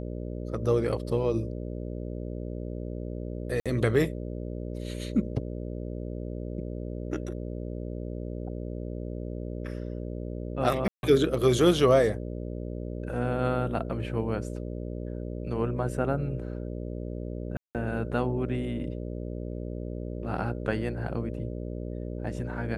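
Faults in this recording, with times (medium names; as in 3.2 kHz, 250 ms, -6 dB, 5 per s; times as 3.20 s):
buzz 60 Hz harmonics 10 -35 dBFS
3.60–3.66 s: dropout 56 ms
10.88–11.03 s: dropout 151 ms
17.57–17.75 s: dropout 178 ms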